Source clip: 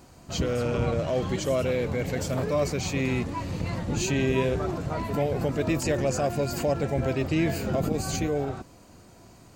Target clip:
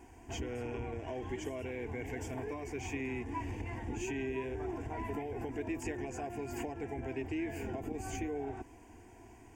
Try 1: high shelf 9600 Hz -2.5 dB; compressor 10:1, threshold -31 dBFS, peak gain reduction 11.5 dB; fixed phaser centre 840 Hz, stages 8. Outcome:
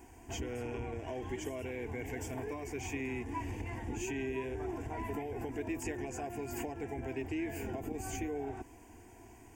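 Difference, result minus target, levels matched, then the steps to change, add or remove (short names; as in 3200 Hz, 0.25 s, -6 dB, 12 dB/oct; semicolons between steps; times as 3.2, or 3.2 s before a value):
8000 Hz band +3.0 dB
change: high shelf 9600 Hz -13.5 dB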